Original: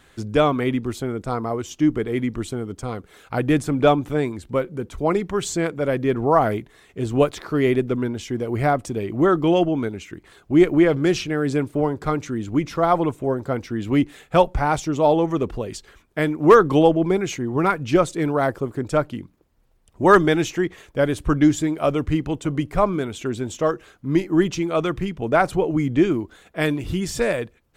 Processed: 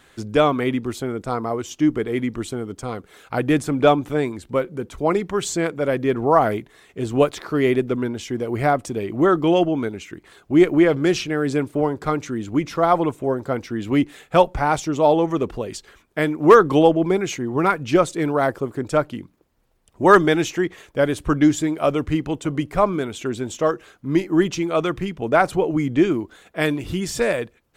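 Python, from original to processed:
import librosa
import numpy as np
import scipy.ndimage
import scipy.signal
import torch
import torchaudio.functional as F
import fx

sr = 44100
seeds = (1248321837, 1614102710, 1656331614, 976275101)

y = fx.low_shelf(x, sr, hz=130.0, db=-7.0)
y = y * librosa.db_to_amplitude(1.5)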